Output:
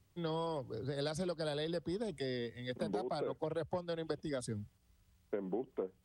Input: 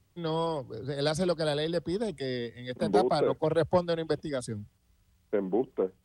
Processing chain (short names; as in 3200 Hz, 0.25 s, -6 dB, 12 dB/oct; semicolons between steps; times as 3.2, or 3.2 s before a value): compressor 10:1, threshold -31 dBFS, peak gain reduction 13 dB; gain -3 dB